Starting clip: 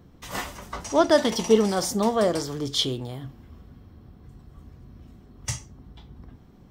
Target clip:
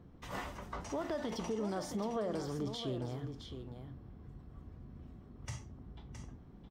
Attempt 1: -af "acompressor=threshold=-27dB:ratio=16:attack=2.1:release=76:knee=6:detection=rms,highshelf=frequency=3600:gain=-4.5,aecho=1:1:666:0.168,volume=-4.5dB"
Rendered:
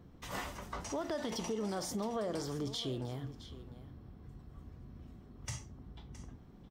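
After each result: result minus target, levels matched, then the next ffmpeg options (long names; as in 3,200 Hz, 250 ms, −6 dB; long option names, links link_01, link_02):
8,000 Hz band +5.5 dB; echo-to-direct −6.5 dB
-af "acompressor=threshold=-27dB:ratio=16:attack=2.1:release=76:knee=6:detection=rms,highshelf=frequency=3600:gain=-13,aecho=1:1:666:0.168,volume=-4.5dB"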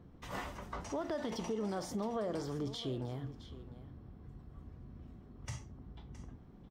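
echo-to-direct −6.5 dB
-af "acompressor=threshold=-27dB:ratio=16:attack=2.1:release=76:knee=6:detection=rms,highshelf=frequency=3600:gain=-13,aecho=1:1:666:0.355,volume=-4.5dB"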